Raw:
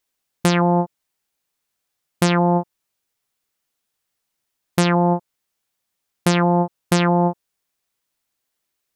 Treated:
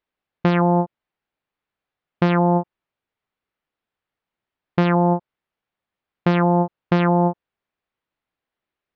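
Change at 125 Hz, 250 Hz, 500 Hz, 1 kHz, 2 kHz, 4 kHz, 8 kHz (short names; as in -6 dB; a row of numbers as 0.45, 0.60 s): 0.0 dB, 0.0 dB, 0.0 dB, -0.5 dB, -2.5 dB, -8.5 dB, under -25 dB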